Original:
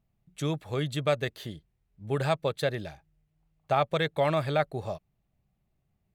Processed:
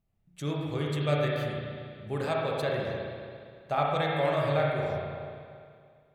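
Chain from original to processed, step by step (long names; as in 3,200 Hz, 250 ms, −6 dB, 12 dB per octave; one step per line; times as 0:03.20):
spring reverb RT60 2.2 s, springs 34/57 ms, chirp 50 ms, DRR −3.5 dB
level −5 dB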